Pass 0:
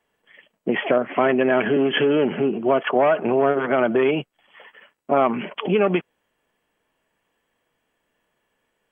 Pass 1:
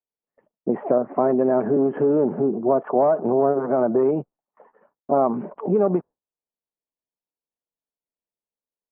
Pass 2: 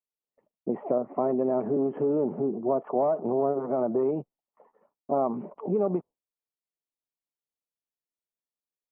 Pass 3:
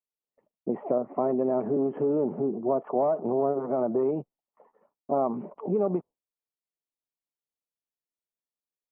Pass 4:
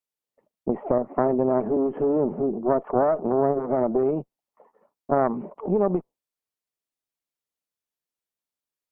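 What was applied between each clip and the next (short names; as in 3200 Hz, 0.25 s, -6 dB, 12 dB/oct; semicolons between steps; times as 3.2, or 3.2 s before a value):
LPF 1000 Hz 24 dB/oct; gate with hold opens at -50 dBFS; spectral noise reduction 6 dB
bell 1600 Hz -11.5 dB 0.34 oct; gain -6.5 dB
nothing audible
added harmonics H 2 -10 dB, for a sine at -13 dBFS; gain +3 dB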